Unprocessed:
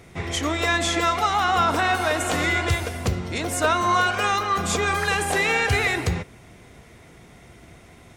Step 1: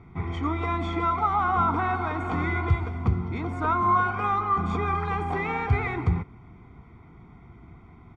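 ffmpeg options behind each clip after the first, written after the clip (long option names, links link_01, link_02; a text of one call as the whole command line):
ffmpeg -i in.wav -af "lowpass=1300,aecho=1:1:0.9:0.84,volume=-3.5dB" out.wav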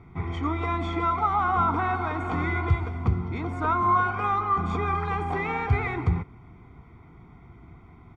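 ffmpeg -i in.wav -af "equalizer=frequency=210:width_type=o:width=0.29:gain=-3" out.wav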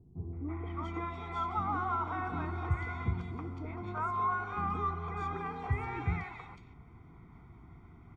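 ffmpeg -i in.wav -filter_complex "[0:a]areverse,acompressor=mode=upward:threshold=-37dB:ratio=2.5,areverse,acrossover=split=550|2700[link_01][link_02][link_03];[link_02]adelay=330[link_04];[link_03]adelay=510[link_05];[link_01][link_04][link_05]amix=inputs=3:normalize=0,volume=-9dB" out.wav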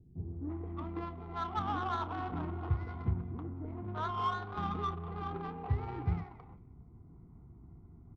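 ffmpeg -i in.wav -filter_complex "[0:a]adynamicsmooth=sensitivity=2:basefreq=540,asplit=2[link_01][link_02];[link_02]adelay=30,volume=-13.5dB[link_03];[link_01][link_03]amix=inputs=2:normalize=0" out.wav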